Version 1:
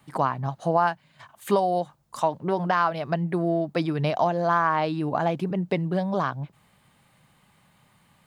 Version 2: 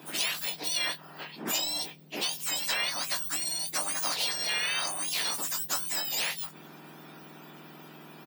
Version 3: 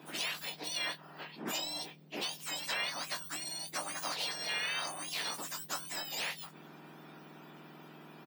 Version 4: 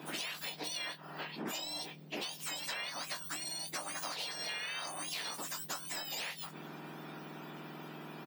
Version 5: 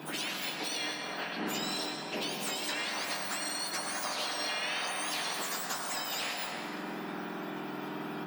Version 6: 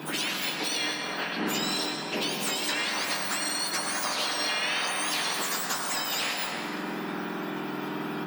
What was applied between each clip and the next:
spectrum mirrored in octaves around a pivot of 1700 Hz; doubler 20 ms -10 dB; spectral compressor 2:1
high shelf 5400 Hz -9 dB; gain -3.5 dB
compressor, threshold -43 dBFS, peak gain reduction 11 dB; gain +5.5 dB
in parallel at -3.5 dB: soft clip -38.5 dBFS, distortion -12 dB; on the sum: reverb RT60 5.4 s, pre-delay 83 ms, DRR -1.5 dB
bell 690 Hz -3.5 dB 0.46 oct; gain +6 dB

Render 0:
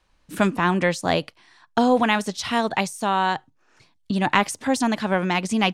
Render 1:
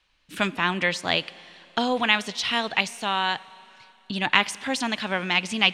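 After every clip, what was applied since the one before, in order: bell 3000 Hz +14 dB 1.9 oct; Schroeder reverb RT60 3 s, combs from 30 ms, DRR 19.5 dB; gain -8 dB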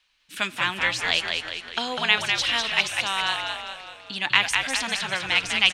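tilt shelf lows -7 dB; on a send: frequency-shifting echo 0.2 s, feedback 51%, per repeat -71 Hz, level -4.5 dB; on the sum: gain -4 dB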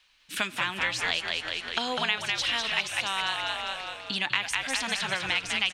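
compressor 3:1, threshold -31 dBFS, peak gain reduction 14 dB; gain +4 dB

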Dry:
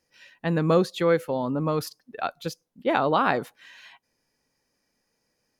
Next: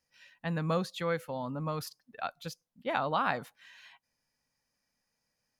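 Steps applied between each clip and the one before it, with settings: bell 370 Hz -11.5 dB 0.83 oct; gain -6 dB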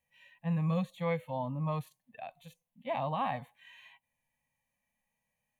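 harmonic-percussive split percussive -18 dB; fixed phaser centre 1400 Hz, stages 6; gain +5.5 dB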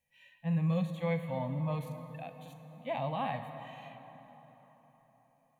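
bell 1100 Hz -5.5 dB 0.75 oct; plate-style reverb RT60 4.5 s, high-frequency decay 0.6×, DRR 7.5 dB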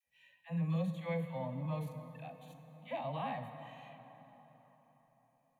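dispersion lows, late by 67 ms, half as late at 640 Hz; gain -4.5 dB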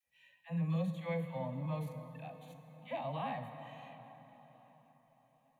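swung echo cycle 0.794 s, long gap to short 3:1, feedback 37%, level -21.5 dB

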